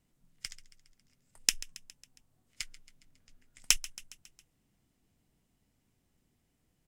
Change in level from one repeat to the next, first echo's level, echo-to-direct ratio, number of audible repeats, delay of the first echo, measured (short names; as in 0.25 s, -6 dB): -4.5 dB, -18.0 dB, -16.0 dB, 4, 0.137 s